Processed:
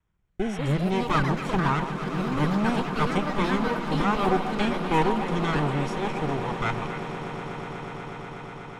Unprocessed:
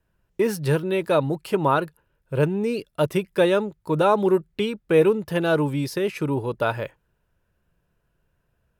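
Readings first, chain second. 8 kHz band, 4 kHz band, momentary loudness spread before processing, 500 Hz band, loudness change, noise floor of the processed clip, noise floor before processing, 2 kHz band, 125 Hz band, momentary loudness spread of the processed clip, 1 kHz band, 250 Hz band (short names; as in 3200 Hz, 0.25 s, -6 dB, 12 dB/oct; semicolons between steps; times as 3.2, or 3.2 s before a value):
n/a, 0.0 dB, 8 LU, -8.0 dB, -3.5 dB, -41 dBFS, -72 dBFS, +0.5 dB, 0.0 dB, 11 LU, +1.5 dB, -0.5 dB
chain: minimum comb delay 0.89 ms; LPF 8100 Hz 24 dB/oct; spectral repair 0.46–0.66, 760–4300 Hz; bell 4600 Hz -13 dB 0.26 oct; rotary speaker horn 0.6 Hz, later 5 Hz, at 4.41; on a send: delay with a stepping band-pass 0.136 s, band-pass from 750 Hz, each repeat 1.4 oct, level -6 dB; on the sum: echoes that change speed 0.273 s, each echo +4 st, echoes 3, each echo -6 dB; swelling echo 0.122 s, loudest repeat 8, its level -16.5 dB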